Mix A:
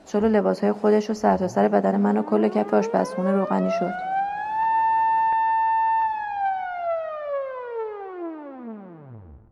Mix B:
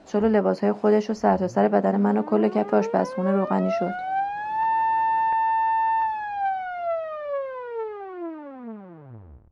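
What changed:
speech: add high-frequency loss of the air 56 metres
reverb: off

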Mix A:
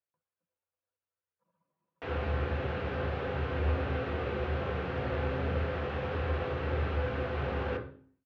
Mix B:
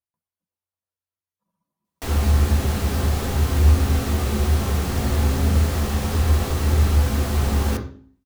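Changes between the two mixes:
background +8.5 dB
master: remove loudspeaker in its box 110–3,000 Hz, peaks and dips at 140 Hz +3 dB, 220 Hz −10 dB, 510 Hz +9 dB, 1,500 Hz +6 dB, 2,600 Hz +3 dB

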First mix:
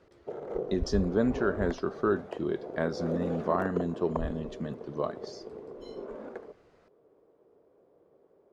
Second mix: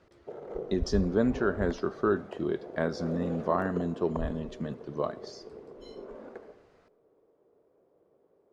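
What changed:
background −6.0 dB
reverb: on, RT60 1.1 s

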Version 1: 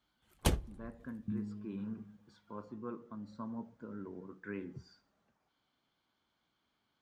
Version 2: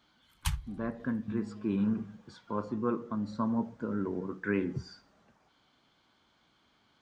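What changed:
speech +12.0 dB
first sound: add Chebyshev band-stop filter 150–910 Hz, order 4

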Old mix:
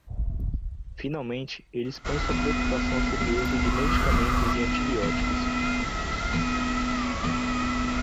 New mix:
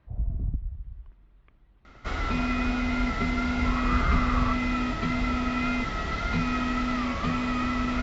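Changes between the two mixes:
speech: muted
first sound: add high-frequency loss of the air 250 metres
master: add high-frequency loss of the air 120 metres

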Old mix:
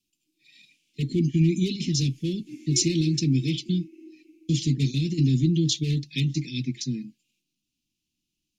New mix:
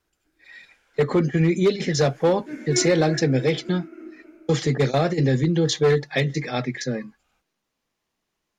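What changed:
background: remove high-pass filter 340 Hz 24 dB per octave
master: remove Chebyshev band-stop filter 320–2,600 Hz, order 4

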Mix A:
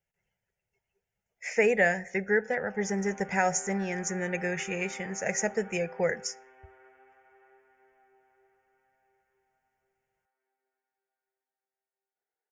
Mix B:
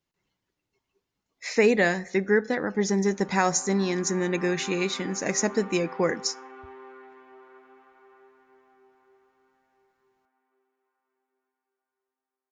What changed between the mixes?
background: entry +0.70 s
master: remove phaser with its sweep stopped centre 1,100 Hz, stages 6

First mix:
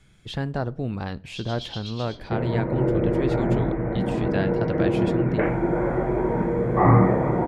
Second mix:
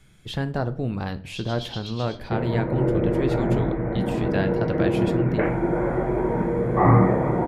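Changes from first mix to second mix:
speech: send +8.5 dB
master: remove low-pass filter 9,100 Hz 12 dB per octave

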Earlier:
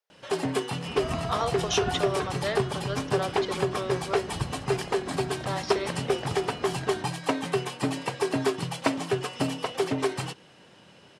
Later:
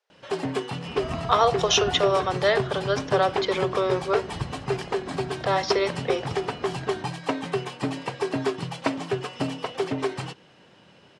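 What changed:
speech +9.5 dB
master: add high-frequency loss of the air 59 metres

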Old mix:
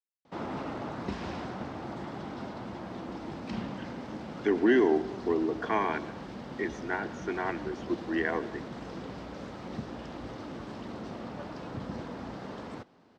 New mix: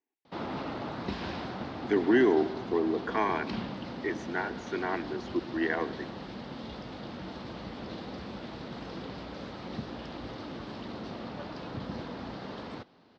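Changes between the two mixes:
speech: entry −2.55 s
background: add low-pass with resonance 4,300 Hz, resonance Q 2

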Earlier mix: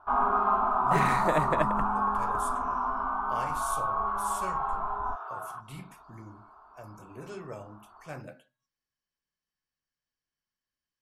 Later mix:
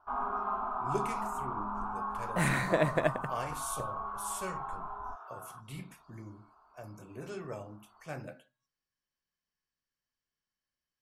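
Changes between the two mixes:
first sound −9.0 dB
second sound: entry +1.45 s

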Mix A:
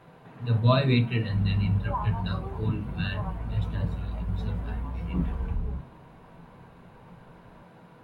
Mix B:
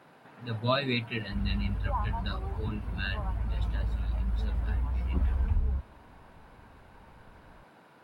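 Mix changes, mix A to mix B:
speech: add high-pass filter 200 Hz 12 dB per octave
reverb: off

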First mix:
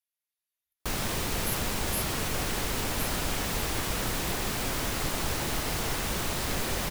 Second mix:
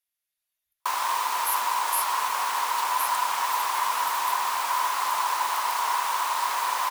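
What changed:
speech +6.0 dB
background: add high-pass with resonance 990 Hz, resonance Q 11

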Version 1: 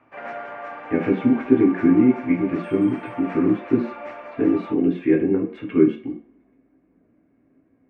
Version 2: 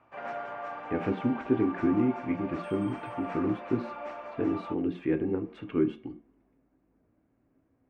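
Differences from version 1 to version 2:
speech: send −8.5 dB
master: add octave-band graphic EQ 250/500/2,000 Hz −4/−4/−8 dB

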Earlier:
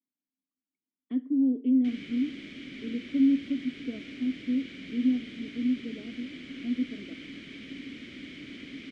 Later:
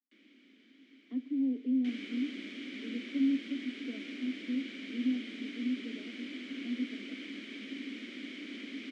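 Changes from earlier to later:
speech −6.5 dB
first sound: unmuted
master: add Butterworth high-pass 200 Hz 96 dB per octave

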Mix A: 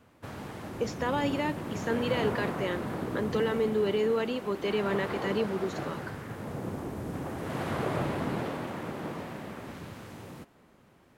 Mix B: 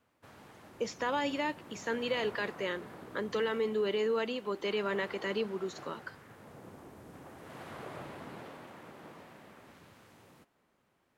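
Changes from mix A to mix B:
background −10.5 dB
master: add low-shelf EQ 410 Hz −7.5 dB

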